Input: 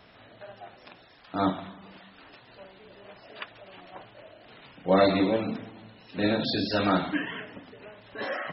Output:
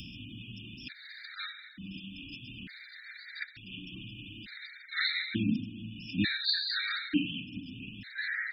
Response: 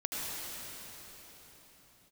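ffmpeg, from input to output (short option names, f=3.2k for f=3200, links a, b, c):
-af "asuperstop=centerf=700:order=12:qfactor=0.53,acompressor=mode=upward:threshold=-38dB:ratio=2.5,afftfilt=real='re*gt(sin(2*PI*0.56*pts/sr)*(1-2*mod(floor(b*sr/1024/1200),2)),0)':imag='im*gt(sin(2*PI*0.56*pts/sr)*(1-2*mod(floor(b*sr/1024/1200),2)),0)':win_size=1024:overlap=0.75,volume=4.5dB"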